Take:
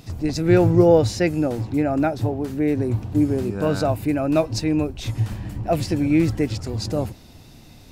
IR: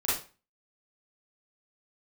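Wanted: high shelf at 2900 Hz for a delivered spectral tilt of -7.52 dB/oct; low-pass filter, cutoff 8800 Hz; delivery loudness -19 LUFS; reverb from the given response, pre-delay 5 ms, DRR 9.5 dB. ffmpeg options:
-filter_complex "[0:a]lowpass=8.8k,highshelf=f=2.9k:g=-8,asplit=2[a][b];[1:a]atrim=start_sample=2205,adelay=5[c];[b][c]afir=irnorm=-1:irlink=0,volume=-18.5dB[d];[a][d]amix=inputs=2:normalize=0,volume=2.5dB"

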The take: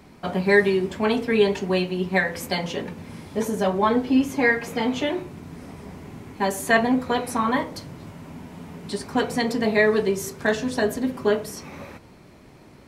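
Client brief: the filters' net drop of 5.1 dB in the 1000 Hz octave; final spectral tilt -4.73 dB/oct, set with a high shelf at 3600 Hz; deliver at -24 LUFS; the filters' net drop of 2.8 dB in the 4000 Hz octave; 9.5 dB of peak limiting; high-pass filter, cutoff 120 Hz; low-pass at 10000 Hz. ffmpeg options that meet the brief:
-af "highpass=120,lowpass=10k,equalizer=f=1k:t=o:g=-7,highshelf=f=3.6k:g=6.5,equalizer=f=4k:t=o:g=-7.5,volume=2.5dB,alimiter=limit=-12.5dB:level=0:latency=1"

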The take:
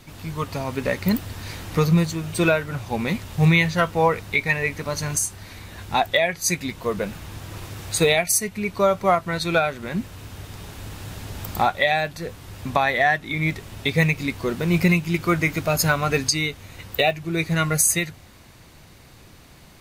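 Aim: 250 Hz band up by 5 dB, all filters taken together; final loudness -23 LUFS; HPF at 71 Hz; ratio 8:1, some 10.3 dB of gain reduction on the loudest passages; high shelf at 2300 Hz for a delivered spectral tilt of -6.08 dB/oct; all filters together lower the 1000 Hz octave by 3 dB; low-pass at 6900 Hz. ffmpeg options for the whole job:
-af "highpass=71,lowpass=6.9k,equalizer=f=250:t=o:g=9,equalizer=f=1k:t=o:g=-3.5,highshelf=f=2.3k:g=-8.5,acompressor=threshold=-20dB:ratio=8,volume=4dB"

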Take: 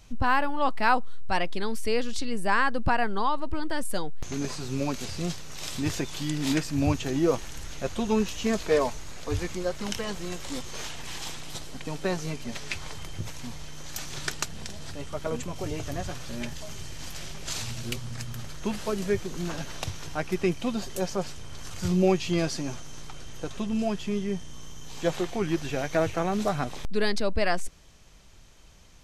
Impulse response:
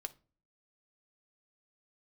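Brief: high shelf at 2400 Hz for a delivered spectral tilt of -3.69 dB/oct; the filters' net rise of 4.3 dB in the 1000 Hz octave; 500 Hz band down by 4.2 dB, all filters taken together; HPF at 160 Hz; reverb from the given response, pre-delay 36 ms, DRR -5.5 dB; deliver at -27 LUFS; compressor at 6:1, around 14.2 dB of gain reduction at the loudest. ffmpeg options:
-filter_complex "[0:a]highpass=160,equalizer=f=500:t=o:g=-7.5,equalizer=f=1k:t=o:g=6.5,highshelf=f=2.4k:g=5.5,acompressor=threshold=-30dB:ratio=6,asplit=2[a][b];[1:a]atrim=start_sample=2205,adelay=36[c];[b][c]afir=irnorm=-1:irlink=0,volume=8dB[d];[a][d]amix=inputs=2:normalize=0,volume=2dB"

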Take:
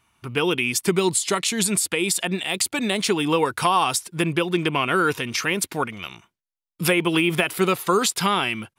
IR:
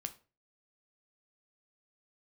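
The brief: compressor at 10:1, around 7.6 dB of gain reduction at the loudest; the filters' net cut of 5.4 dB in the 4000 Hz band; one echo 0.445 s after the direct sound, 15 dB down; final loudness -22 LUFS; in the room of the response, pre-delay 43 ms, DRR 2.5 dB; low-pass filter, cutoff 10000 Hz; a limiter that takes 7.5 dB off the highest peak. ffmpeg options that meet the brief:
-filter_complex "[0:a]lowpass=10k,equalizer=f=4k:t=o:g=-7.5,acompressor=threshold=-23dB:ratio=10,alimiter=limit=-19.5dB:level=0:latency=1,aecho=1:1:445:0.178,asplit=2[a][b];[1:a]atrim=start_sample=2205,adelay=43[c];[b][c]afir=irnorm=-1:irlink=0,volume=-0.5dB[d];[a][d]amix=inputs=2:normalize=0,volume=6dB"

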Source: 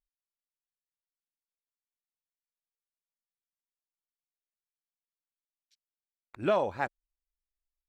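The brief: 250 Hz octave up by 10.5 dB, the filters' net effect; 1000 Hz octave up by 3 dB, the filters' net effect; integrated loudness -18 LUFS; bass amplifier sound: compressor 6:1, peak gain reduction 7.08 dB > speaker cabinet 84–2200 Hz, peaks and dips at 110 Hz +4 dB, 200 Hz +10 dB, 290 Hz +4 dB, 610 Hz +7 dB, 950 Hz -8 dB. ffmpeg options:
-af "equalizer=f=250:t=o:g=5.5,equalizer=f=1k:t=o:g=6.5,acompressor=threshold=-25dB:ratio=6,highpass=f=84:w=0.5412,highpass=f=84:w=1.3066,equalizer=f=110:t=q:w=4:g=4,equalizer=f=200:t=q:w=4:g=10,equalizer=f=290:t=q:w=4:g=4,equalizer=f=610:t=q:w=4:g=7,equalizer=f=950:t=q:w=4:g=-8,lowpass=f=2.2k:w=0.5412,lowpass=f=2.2k:w=1.3066,volume=11.5dB"

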